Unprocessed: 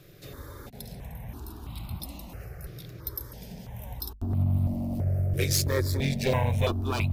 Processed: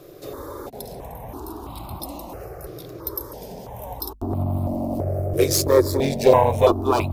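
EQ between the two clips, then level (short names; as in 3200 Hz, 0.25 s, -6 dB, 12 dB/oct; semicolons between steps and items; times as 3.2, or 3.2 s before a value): tone controls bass 0 dB, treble +6 dB; band shelf 590 Hz +14 dB 2.4 oct; 0.0 dB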